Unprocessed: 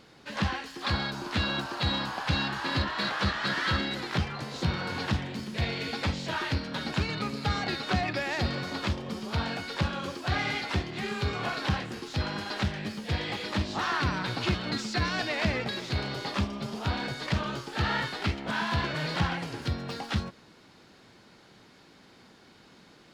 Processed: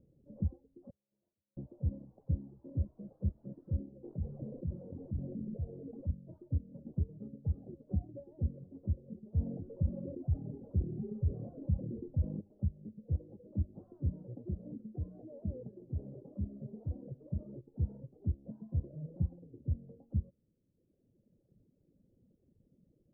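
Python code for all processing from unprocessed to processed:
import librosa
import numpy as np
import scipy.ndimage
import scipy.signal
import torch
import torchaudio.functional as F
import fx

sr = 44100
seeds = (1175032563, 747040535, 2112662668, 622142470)

y = fx.chain(x, sr, fx.lower_of_two(delay_ms=9.5),
    fx.differentiator(),
    fx.over_compress(threshold_db=-48.0, ratio=-1.0), at=(0.9, 1.57))
y = fx.chain(y, sr, fx.lowpass(hz=2700.0, slope=6),
    fx.peak_eq(hz=78.0, db=-8.0, octaves=2.8),
    fx.env_flatten(amount_pct=100), at=(4.04, 6.09))
y = fx.chain(y, sr, fx.peak_eq(hz=2300.0, db=-4.0, octaves=1.0),
    fx.env_flatten(amount_pct=70), at=(9.36, 12.41))
y = fx.chain(y, sr, fx.low_shelf(hz=160.0, db=-8.5),
    fx.env_flatten(amount_pct=50), at=(14.13, 17.61))
y = scipy.signal.sosfilt(scipy.signal.cheby1(5, 1.0, 550.0, 'lowpass', fs=sr, output='sos'), y)
y = fx.dereverb_blind(y, sr, rt60_s=1.7)
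y = fx.peak_eq(y, sr, hz=420.0, db=-14.0, octaves=2.2)
y = y * librosa.db_to_amplitude(1.0)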